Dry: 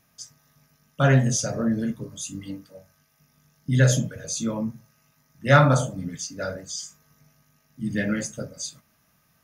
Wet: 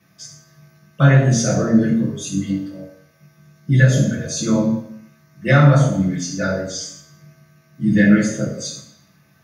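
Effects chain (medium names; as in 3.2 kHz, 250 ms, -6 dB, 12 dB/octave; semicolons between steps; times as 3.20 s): compression 6:1, threshold -20 dBFS, peak gain reduction 10 dB; reverberation RT60 0.70 s, pre-delay 3 ms, DRR -7 dB; trim -7 dB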